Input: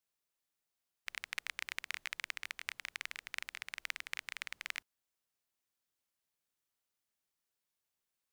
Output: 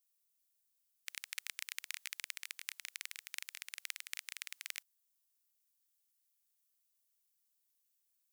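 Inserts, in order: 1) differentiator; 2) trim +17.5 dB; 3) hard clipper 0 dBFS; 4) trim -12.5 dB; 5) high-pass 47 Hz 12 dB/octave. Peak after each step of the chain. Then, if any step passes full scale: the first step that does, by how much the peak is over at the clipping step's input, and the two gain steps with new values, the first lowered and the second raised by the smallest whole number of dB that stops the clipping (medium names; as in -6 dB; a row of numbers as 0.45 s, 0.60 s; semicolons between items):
-20.0 dBFS, -2.5 dBFS, -2.5 dBFS, -15.0 dBFS, -15.0 dBFS; nothing clips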